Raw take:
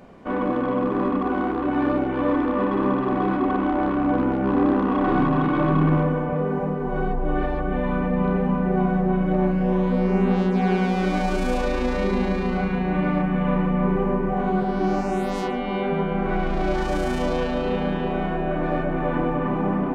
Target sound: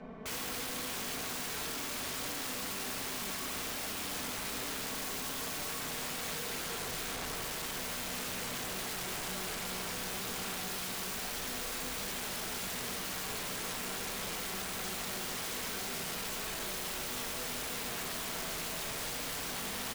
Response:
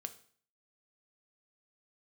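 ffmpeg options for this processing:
-filter_complex "[0:a]lowpass=4500,highshelf=f=2700:g=-2,bandreject=f=60:t=h:w=6,bandreject=f=120:t=h:w=6,bandreject=f=180:t=h:w=6,bandreject=f=240:t=h:w=6,bandreject=f=300:t=h:w=6,bandreject=f=360:t=h:w=6,bandreject=f=420:t=h:w=6,bandreject=f=480:t=h:w=6,aecho=1:1:4.6:0.94,acrossover=split=390|1000[s0][s1][s2];[s0]alimiter=limit=0.141:level=0:latency=1:release=169[s3];[s3][s1][s2]amix=inputs=3:normalize=0,asoftclip=type=tanh:threshold=0.119,asplit=2[s4][s5];[s5]acrusher=bits=4:mix=0:aa=0.000001,volume=0.531[s6];[s4][s6]amix=inputs=2:normalize=0,aeval=exprs='(mod(37.6*val(0)+1,2)-1)/37.6':c=same[s7];[1:a]atrim=start_sample=2205[s8];[s7][s8]afir=irnorm=-1:irlink=0"

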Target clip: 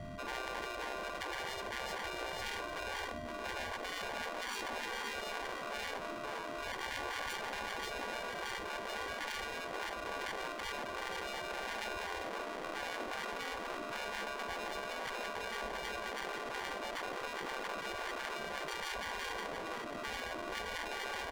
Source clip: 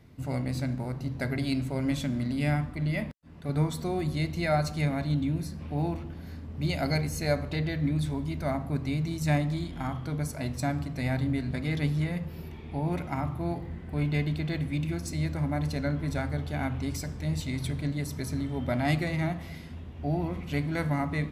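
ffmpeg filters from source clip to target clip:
-filter_complex "[0:a]aeval=exprs='val(0)+0.00251*sin(2*PI*4500*n/s)':c=same,flanger=delay=7.6:depth=2.9:regen=86:speed=0.25:shape=sinusoidal,acrossover=split=310|3000[s0][s1][s2];[s0]acompressor=threshold=0.00708:ratio=8[s3];[s3][s1][s2]amix=inputs=3:normalize=0,firequalizer=gain_entry='entry(150,0);entry(500,-12);entry(11000,3)':delay=0.05:min_phase=1,aecho=1:1:522|1044|1566:0.447|0.112|0.0279,acrusher=samples=34:mix=1:aa=0.000001,afftfilt=real='re*lt(hypot(re,im),0.01)':imag='im*lt(hypot(re,im),0.01)':win_size=1024:overlap=0.75,aemphasis=mode=reproduction:type=75kf,volume=6.68"

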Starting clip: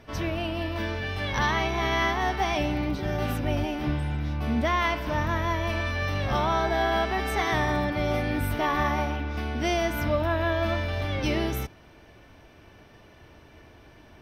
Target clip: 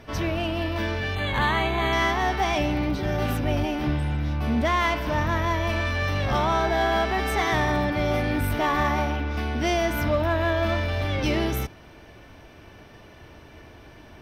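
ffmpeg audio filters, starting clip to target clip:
-filter_complex "[0:a]asplit=2[s0][s1];[s1]asoftclip=type=tanh:threshold=0.0316,volume=0.708[s2];[s0][s2]amix=inputs=2:normalize=0,asettb=1/sr,asplit=3[s3][s4][s5];[s3]atrim=end=1.154[s6];[s4]atrim=start=1.15:end=1.93,asetpts=PTS-STARTPTS,afade=t=in:d=0.004:c=qsin,afade=t=out:st=0.776:d=0.004:c=qsin,asuperstop=centerf=5400:order=8:qfactor=3.1[s7];[s5]atrim=start=1.926[s8];[s6][s7]acrossfade=d=0.004:c1=hsin:c2=qsin[s9];[s9][s8]acrossfade=d=0.004:c1=qsin:c2=hsin"

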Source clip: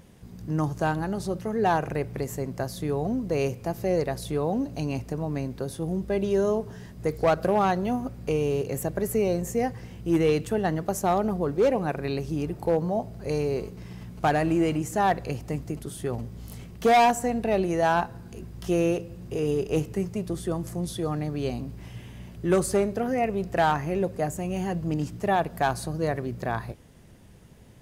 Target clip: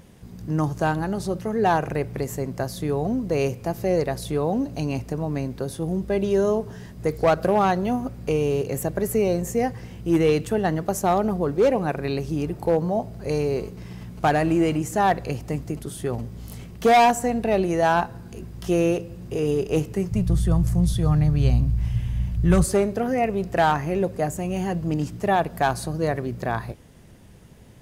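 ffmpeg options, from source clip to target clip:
-filter_complex "[0:a]asplit=3[s0][s1][s2];[s0]afade=t=out:st=20.1:d=0.02[s3];[s1]asubboost=boost=11.5:cutoff=100,afade=t=in:st=20.1:d=0.02,afade=t=out:st=22.63:d=0.02[s4];[s2]afade=t=in:st=22.63:d=0.02[s5];[s3][s4][s5]amix=inputs=3:normalize=0,volume=1.41"

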